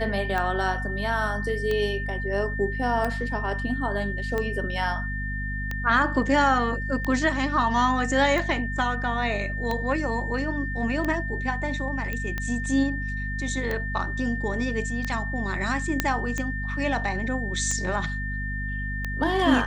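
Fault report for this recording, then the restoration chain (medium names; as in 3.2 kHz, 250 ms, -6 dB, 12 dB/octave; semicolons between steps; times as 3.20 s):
hum 50 Hz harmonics 5 -31 dBFS
tick 45 rpm -15 dBFS
whine 1.8 kHz -32 dBFS
12.13 s: pop -17 dBFS
16.00 s: pop -6 dBFS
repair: de-click; band-stop 1.8 kHz, Q 30; de-hum 50 Hz, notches 5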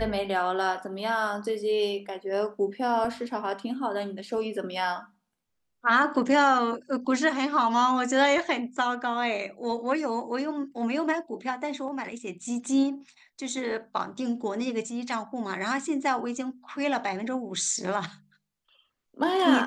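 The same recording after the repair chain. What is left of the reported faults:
nothing left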